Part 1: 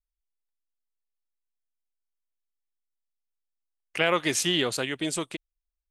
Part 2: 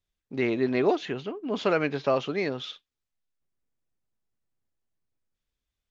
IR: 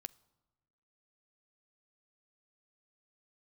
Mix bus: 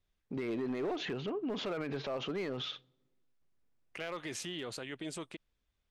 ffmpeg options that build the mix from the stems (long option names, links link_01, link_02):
-filter_complex "[0:a]volume=-7dB[link_01];[1:a]alimiter=limit=-22dB:level=0:latency=1:release=69,volume=2dB,asplit=2[link_02][link_03];[link_03]volume=-4.5dB[link_04];[2:a]atrim=start_sample=2205[link_05];[link_04][link_05]afir=irnorm=-1:irlink=0[link_06];[link_01][link_02][link_06]amix=inputs=3:normalize=0,lowpass=frequency=3200:poles=1,asoftclip=type=hard:threshold=-22dB,alimiter=level_in=6.5dB:limit=-24dB:level=0:latency=1:release=40,volume=-6.5dB"